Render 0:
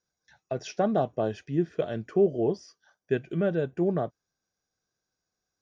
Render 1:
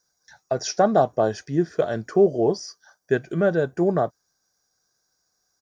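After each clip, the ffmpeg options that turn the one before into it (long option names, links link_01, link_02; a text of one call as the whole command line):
ffmpeg -i in.wav -af "firequalizer=gain_entry='entry(240,0);entry(760,6);entry(1600,6);entry(2700,-5);entry(4700,11)':delay=0.05:min_phase=1,volume=3.5dB" out.wav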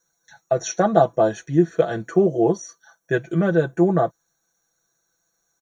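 ffmpeg -i in.wav -af "asuperstop=centerf=5000:order=12:qfactor=4.2,aecho=1:1:6:0.88" out.wav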